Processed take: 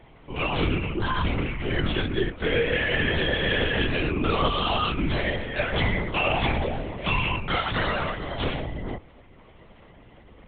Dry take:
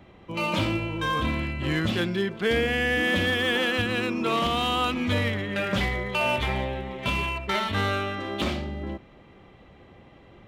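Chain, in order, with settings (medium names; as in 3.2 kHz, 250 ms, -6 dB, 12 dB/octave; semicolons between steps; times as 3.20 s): chorus voices 4, 0.87 Hz, delay 17 ms, depth 1.9 ms; LPC vocoder at 8 kHz whisper; trim +3.5 dB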